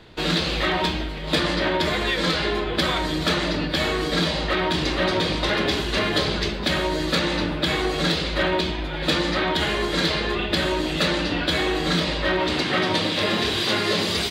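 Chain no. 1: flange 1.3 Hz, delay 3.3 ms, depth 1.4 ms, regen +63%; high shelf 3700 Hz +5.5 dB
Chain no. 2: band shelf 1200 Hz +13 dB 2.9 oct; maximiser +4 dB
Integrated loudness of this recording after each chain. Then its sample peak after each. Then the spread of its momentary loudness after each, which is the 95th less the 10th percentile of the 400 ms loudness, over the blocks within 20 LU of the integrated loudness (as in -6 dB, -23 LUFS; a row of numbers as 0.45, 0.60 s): -25.0, -10.5 LUFS; -12.5, -1.0 dBFS; 3, 2 LU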